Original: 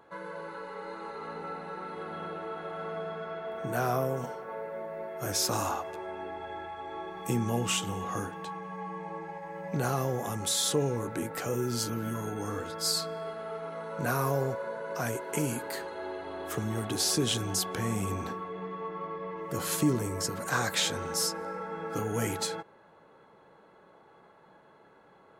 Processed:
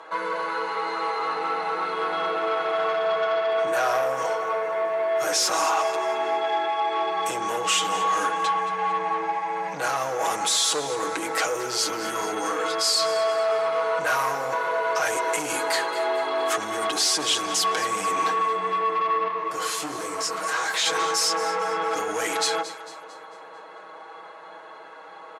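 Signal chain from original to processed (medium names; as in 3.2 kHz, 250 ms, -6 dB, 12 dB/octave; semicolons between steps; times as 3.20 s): comb 6.3 ms, depth 88%; in parallel at -1.5 dB: compressor with a negative ratio -33 dBFS, ratio -0.5; on the sum: saturation -24 dBFS, distortion -13 dB; band-pass 620–7900 Hz; on a send: echo whose repeats swap between lows and highs 112 ms, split 890 Hz, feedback 68%, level -11 dB; 19.28–20.86 s: on the sum: detune thickener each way 41 cents; trim +8.5 dB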